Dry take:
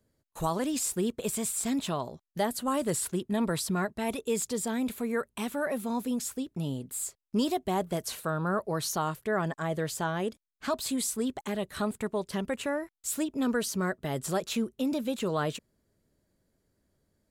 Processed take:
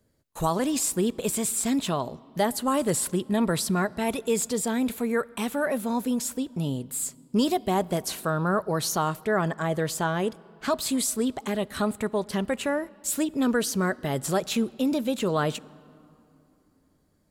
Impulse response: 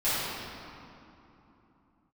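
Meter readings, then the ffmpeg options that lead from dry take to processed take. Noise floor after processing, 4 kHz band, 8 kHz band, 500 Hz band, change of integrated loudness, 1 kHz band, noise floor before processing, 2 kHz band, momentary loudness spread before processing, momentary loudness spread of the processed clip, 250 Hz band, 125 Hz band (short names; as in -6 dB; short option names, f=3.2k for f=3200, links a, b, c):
-65 dBFS, +4.5 dB, +4.5 dB, +4.5 dB, +4.5 dB, +4.5 dB, -78 dBFS, +4.5 dB, 5 LU, 5 LU, +4.5 dB, +4.5 dB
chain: -filter_complex "[0:a]asplit=2[a][b];[1:a]atrim=start_sample=2205,adelay=11[c];[b][c]afir=irnorm=-1:irlink=0,volume=-35dB[d];[a][d]amix=inputs=2:normalize=0,volume=4.5dB"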